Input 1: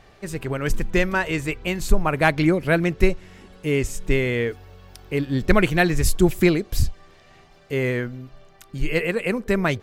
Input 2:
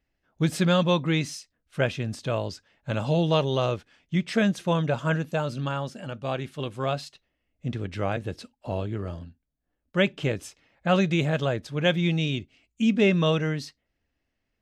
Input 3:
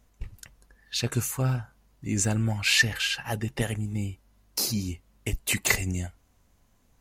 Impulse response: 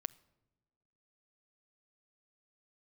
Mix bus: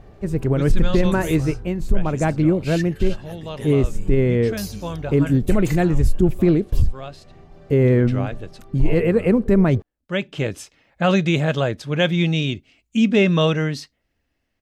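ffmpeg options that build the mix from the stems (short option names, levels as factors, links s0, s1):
-filter_complex "[0:a]tiltshelf=f=910:g=9.5,volume=1[s0];[1:a]adelay=150,volume=0.501[s1];[2:a]volume=0.473[s2];[s0][s1][s2]amix=inputs=3:normalize=0,dynaudnorm=f=340:g=3:m=3.76,alimiter=limit=0.422:level=0:latency=1:release=28"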